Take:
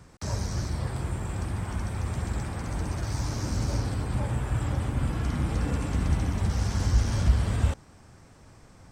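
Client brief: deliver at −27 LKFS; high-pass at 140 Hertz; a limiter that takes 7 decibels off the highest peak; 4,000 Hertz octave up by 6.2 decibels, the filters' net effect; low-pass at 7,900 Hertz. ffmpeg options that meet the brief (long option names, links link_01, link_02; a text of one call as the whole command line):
ffmpeg -i in.wav -af "highpass=140,lowpass=7900,equalizer=frequency=4000:width_type=o:gain=8.5,volume=8.5dB,alimiter=limit=-17.5dB:level=0:latency=1" out.wav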